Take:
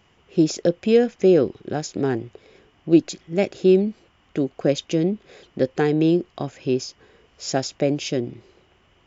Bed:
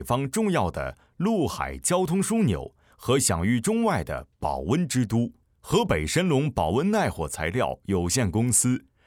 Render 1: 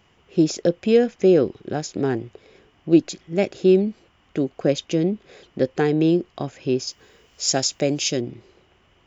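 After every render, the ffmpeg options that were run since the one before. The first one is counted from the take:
ffmpeg -i in.wav -filter_complex "[0:a]asettb=1/sr,asplit=3[link_01][link_02][link_03];[link_01]atrim=end=6.874[link_04];[link_02]atrim=start=6.87:end=8.21,asetpts=PTS-STARTPTS,afade=type=in:duration=0.004:curve=qsin,afade=type=out:start_time=1.336:duration=0.004:curve=qsin,aemphasis=mode=production:type=75fm[link_05];[link_03]atrim=start=8.206[link_06];[link_04][link_05]acrossfade=duration=0.004:curve1=hsin:curve2=qsin[link_07];[link_07][link_06]acrossfade=duration=0.004:curve1=qsin:curve2=hsin" out.wav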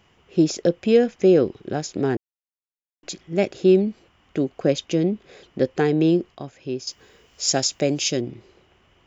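ffmpeg -i in.wav -filter_complex "[0:a]asplit=5[link_01][link_02][link_03][link_04][link_05];[link_01]atrim=end=2.17,asetpts=PTS-STARTPTS,afade=type=out:start_time=2.166:duration=0.004:curve=hsin[link_06];[link_02]atrim=start=2.17:end=3.03,asetpts=PTS-STARTPTS,volume=0[link_07];[link_03]atrim=start=3.03:end=6.352,asetpts=PTS-STARTPTS,afade=type=in:duration=0.004:curve=hsin[link_08];[link_04]atrim=start=6.348:end=6.872,asetpts=PTS-STARTPTS,volume=-6.5dB[link_09];[link_05]atrim=start=6.868[link_10];[link_06][link_07][link_08]concat=n=3:v=0:a=1[link_11];[link_11][link_09]acrossfade=duration=0.004:curve1=hsin:curve2=hsin[link_12];[link_12][link_10]acrossfade=duration=0.004:curve1=hsin:curve2=hsin" out.wav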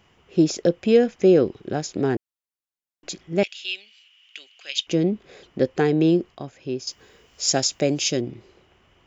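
ffmpeg -i in.wav -filter_complex "[0:a]asettb=1/sr,asplit=3[link_01][link_02][link_03];[link_01]atrim=end=3.434[link_04];[link_02]atrim=start=3.43:end=4.87,asetpts=PTS-STARTPTS,afade=type=in:duration=0.004:curve=qsin,afade=type=out:start_time=1.436:duration=0.004:curve=qsin,highpass=frequency=2900:width_type=q:width=3.8[link_05];[link_03]atrim=start=4.866[link_06];[link_04][link_05]acrossfade=duration=0.004:curve1=hsin:curve2=qsin[link_07];[link_07][link_06]acrossfade=duration=0.004:curve1=qsin:curve2=hsin" out.wav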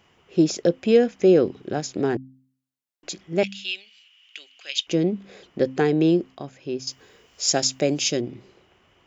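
ffmpeg -i in.wav -af "lowshelf=frequency=71:gain=-8.5,bandreject=frequency=65.62:width_type=h:width=4,bandreject=frequency=131.24:width_type=h:width=4,bandreject=frequency=196.86:width_type=h:width=4,bandreject=frequency=262.48:width_type=h:width=4" out.wav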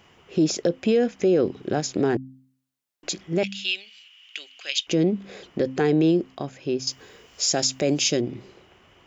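ffmpeg -i in.wav -filter_complex "[0:a]asplit=2[link_01][link_02];[link_02]acompressor=threshold=-28dB:ratio=6,volume=-3dB[link_03];[link_01][link_03]amix=inputs=2:normalize=0,alimiter=limit=-12dB:level=0:latency=1:release=37" out.wav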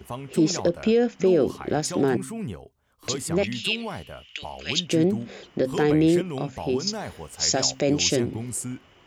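ffmpeg -i in.wav -i bed.wav -filter_complex "[1:a]volume=-10dB[link_01];[0:a][link_01]amix=inputs=2:normalize=0" out.wav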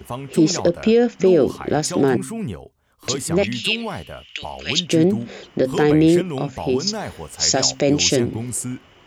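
ffmpeg -i in.wav -af "volume=5dB" out.wav

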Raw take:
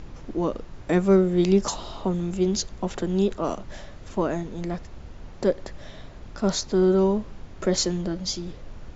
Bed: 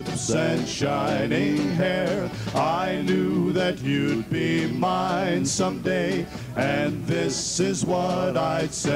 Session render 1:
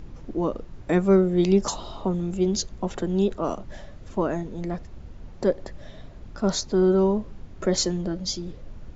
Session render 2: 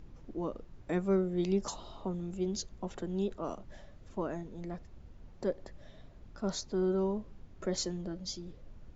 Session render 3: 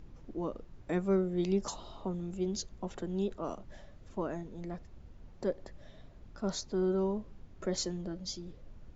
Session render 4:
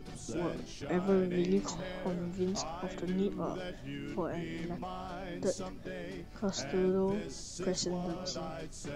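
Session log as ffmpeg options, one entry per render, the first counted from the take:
ffmpeg -i in.wav -af "afftdn=noise_reduction=6:noise_floor=-43" out.wav
ffmpeg -i in.wav -af "volume=-11dB" out.wav
ffmpeg -i in.wav -af anull out.wav
ffmpeg -i in.wav -i bed.wav -filter_complex "[1:a]volume=-18.5dB[link_01];[0:a][link_01]amix=inputs=2:normalize=0" out.wav

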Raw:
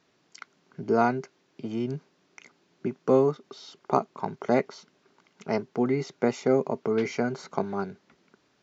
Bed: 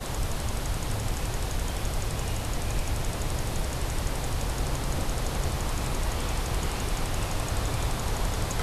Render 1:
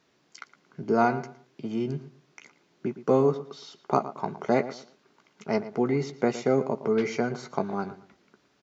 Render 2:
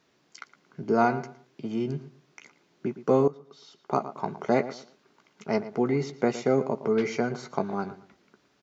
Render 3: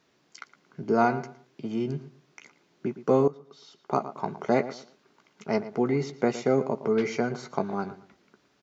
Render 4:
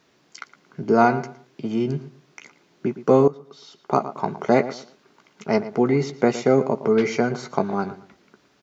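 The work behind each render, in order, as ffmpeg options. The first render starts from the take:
ffmpeg -i in.wav -filter_complex "[0:a]asplit=2[link_01][link_02];[link_02]adelay=14,volume=-10.5dB[link_03];[link_01][link_03]amix=inputs=2:normalize=0,asplit=2[link_04][link_05];[link_05]adelay=114,lowpass=frequency=3500:poles=1,volume=-14dB,asplit=2[link_06][link_07];[link_07]adelay=114,lowpass=frequency=3500:poles=1,volume=0.26,asplit=2[link_08][link_09];[link_09]adelay=114,lowpass=frequency=3500:poles=1,volume=0.26[link_10];[link_04][link_06][link_08][link_10]amix=inputs=4:normalize=0" out.wav
ffmpeg -i in.wav -filter_complex "[0:a]asplit=2[link_01][link_02];[link_01]atrim=end=3.28,asetpts=PTS-STARTPTS,afade=type=out:start_time=3.276:duration=0.004:curve=hsin:silence=0.133352[link_03];[link_02]atrim=start=3.28,asetpts=PTS-STARTPTS,afade=type=in:duration=0.94:silence=0.133352[link_04];[link_03][link_04]concat=n=2:v=0:a=1" out.wav
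ffmpeg -i in.wav -af anull out.wav
ffmpeg -i in.wav -af "volume=6dB" out.wav

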